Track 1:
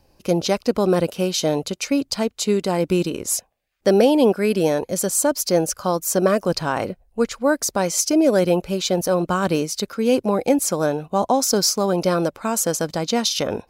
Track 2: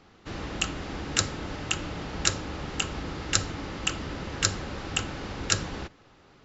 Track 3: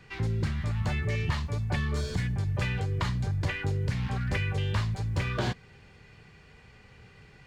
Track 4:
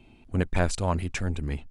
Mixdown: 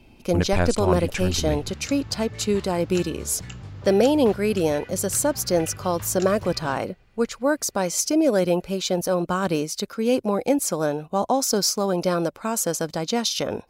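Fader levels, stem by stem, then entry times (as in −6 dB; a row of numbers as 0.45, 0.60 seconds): −3.0, −14.0, −9.5, +2.5 decibels; 0.00, 0.70, 1.25, 0.00 seconds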